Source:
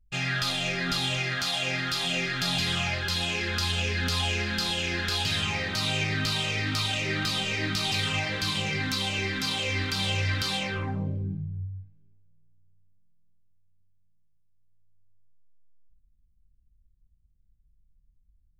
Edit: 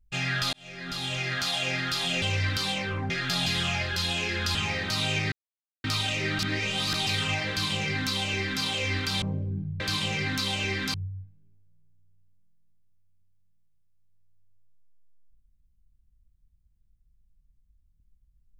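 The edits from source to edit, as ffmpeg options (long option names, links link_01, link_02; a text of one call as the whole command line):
ffmpeg -i in.wav -filter_complex "[0:a]asplit=12[link_01][link_02][link_03][link_04][link_05][link_06][link_07][link_08][link_09][link_10][link_11][link_12];[link_01]atrim=end=0.53,asetpts=PTS-STARTPTS,afade=type=out:start_time=0.526:duration=0.004:curve=hsin[link_13];[link_02]atrim=start=0.53:end=2.222,asetpts=PTS-STARTPTS,afade=type=in:duration=0.83[link_14];[link_03]atrim=start=10.068:end=10.952[link_15];[link_04]atrim=start=2.218:end=3.672[link_16];[link_05]atrim=start=5.398:end=6.17,asetpts=PTS-STARTPTS,afade=type=out:start_time=0.768:duration=0.004:curve=hsin[link_17];[link_06]atrim=start=6.17:end=6.69,asetpts=PTS-STARTPTS,volume=0[link_18];[link_07]atrim=start=6.69:end=7.242,asetpts=PTS-STARTPTS,afade=type=in:duration=0.004:curve=hsin[link_19];[link_08]atrim=start=7.238:end=7.792,asetpts=PTS-STARTPTS,areverse[link_20];[link_09]atrim=start=7.788:end=10.072[link_21];[link_10]atrim=start=10.948:end=11.532[link_22];[link_11]atrim=start=8.338:end=9.482[link_23];[link_12]atrim=start=11.528[link_24];[link_13][link_14]concat=n=2:v=0:a=1[link_25];[link_25][link_15]acrossfade=duration=0.004:curve1=hsin:curve2=hsin[link_26];[link_26][link_16]acrossfade=duration=0.004:curve1=hsin:curve2=hsin[link_27];[link_17][link_18][link_19]concat=n=3:v=0:a=1[link_28];[link_27][link_28]acrossfade=duration=0.004:curve1=hsin:curve2=hsin[link_29];[link_29][link_20]acrossfade=duration=0.004:curve1=hsin:curve2=hsin[link_30];[link_30][link_21]acrossfade=duration=0.004:curve1=hsin:curve2=hsin[link_31];[link_31][link_22]acrossfade=duration=0.004:curve1=hsin:curve2=hsin[link_32];[link_32][link_23]acrossfade=duration=0.004:curve1=hsin:curve2=hsin[link_33];[link_33][link_24]acrossfade=duration=0.004:curve1=hsin:curve2=hsin" out.wav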